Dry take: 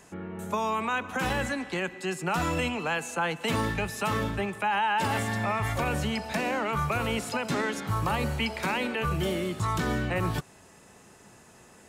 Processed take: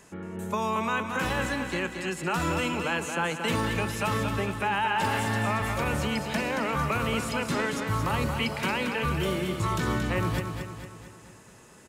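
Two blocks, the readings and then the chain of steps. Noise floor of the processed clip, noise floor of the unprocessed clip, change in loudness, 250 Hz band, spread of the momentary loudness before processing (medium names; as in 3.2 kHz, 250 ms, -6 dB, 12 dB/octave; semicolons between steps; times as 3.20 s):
-51 dBFS, -54 dBFS, +1.0 dB, +1.5 dB, 4 LU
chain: peaking EQ 740 Hz -6 dB 0.2 oct; on a send: feedback delay 227 ms, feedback 51%, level -6.5 dB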